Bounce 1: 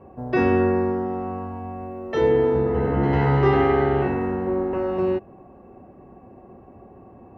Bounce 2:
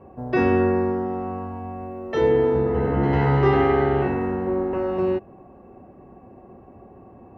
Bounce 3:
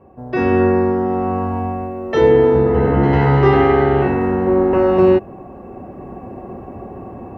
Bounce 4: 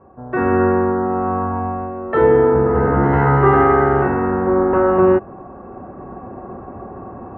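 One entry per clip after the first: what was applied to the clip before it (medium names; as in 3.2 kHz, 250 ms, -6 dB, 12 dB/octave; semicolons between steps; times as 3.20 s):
no audible change
level rider gain up to 15 dB; trim -1 dB
resonant low-pass 1.4 kHz, resonance Q 2.7; trim -2 dB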